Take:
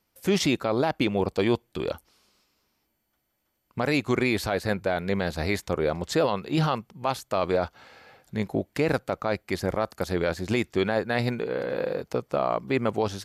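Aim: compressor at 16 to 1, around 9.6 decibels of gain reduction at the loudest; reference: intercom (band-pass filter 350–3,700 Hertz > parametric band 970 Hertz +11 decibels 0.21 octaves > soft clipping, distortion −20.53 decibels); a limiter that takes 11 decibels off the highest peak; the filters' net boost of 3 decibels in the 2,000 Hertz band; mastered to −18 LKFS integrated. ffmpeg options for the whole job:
ffmpeg -i in.wav -af "equalizer=frequency=2000:width_type=o:gain=4,acompressor=threshold=-28dB:ratio=16,alimiter=level_in=2.5dB:limit=-24dB:level=0:latency=1,volume=-2.5dB,highpass=350,lowpass=3700,equalizer=frequency=970:width_type=o:width=0.21:gain=11,asoftclip=threshold=-26.5dB,volume=23.5dB" out.wav

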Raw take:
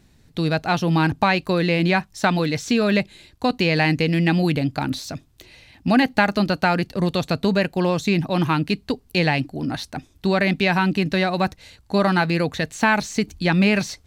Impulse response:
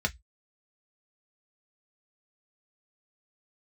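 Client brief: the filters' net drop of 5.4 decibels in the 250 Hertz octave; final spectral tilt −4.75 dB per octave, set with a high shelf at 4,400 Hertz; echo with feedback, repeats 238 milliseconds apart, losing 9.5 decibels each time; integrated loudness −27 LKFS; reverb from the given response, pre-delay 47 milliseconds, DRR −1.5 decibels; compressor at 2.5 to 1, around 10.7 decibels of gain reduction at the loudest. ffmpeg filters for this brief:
-filter_complex "[0:a]equalizer=frequency=250:width_type=o:gain=-8.5,highshelf=frequency=4400:gain=-8.5,acompressor=threshold=-32dB:ratio=2.5,aecho=1:1:238|476|714|952:0.335|0.111|0.0365|0.012,asplit=2[link_01][link_02];[1:a]atrim=start_sample=2205,adelay=47[link_03];[link_02][link_03]afir=irnorm=-1:irlink=0,volume=-6dB[link_04];[link_01][link_04]amix=inputs=2:normalize=0,volume=1dB"

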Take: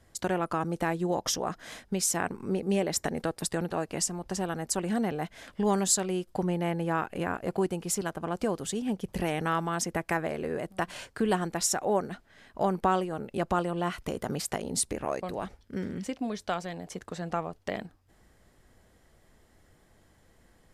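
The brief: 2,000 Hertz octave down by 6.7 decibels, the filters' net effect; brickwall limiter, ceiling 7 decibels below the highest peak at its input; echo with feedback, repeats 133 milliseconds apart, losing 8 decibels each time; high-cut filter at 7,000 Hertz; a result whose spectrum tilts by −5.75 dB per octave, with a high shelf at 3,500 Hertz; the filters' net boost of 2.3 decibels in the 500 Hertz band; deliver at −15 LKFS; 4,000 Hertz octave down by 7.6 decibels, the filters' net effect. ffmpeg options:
ffmpeg -i in.wav -af "lowpass=7000,equalizer=frequency=500:width_type=o:gain=3.5,equalizer=frequency=2000:width_type=o:gain=-7.5,highshelf=frequency=3500:gain=-3.5,equalizer=frequency=4000:width_type=o:gain=-5,alimiter=limit=-20dB:level=0:latency=1,aecho=1:1:133|266|399|532|665:0.398|0.159|0.0637|0.0255|0.0102,volume=16.5dB" out.wav

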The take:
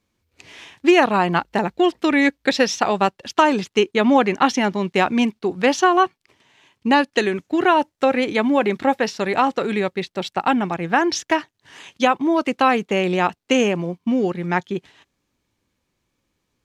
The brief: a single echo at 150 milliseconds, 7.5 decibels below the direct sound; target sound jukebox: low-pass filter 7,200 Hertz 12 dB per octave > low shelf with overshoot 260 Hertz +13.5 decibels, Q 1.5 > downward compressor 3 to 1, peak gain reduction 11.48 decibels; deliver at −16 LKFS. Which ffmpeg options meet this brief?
ffmpeg -i in.wav -af "lowpass=7200,lowshelf=frequency=260:width_type=q:width=1.5:gain=13.5,aecho=1:1:150:0.422,acompressor=threshold=-21dB:ratio=3,volume=6.5dB" out.wav

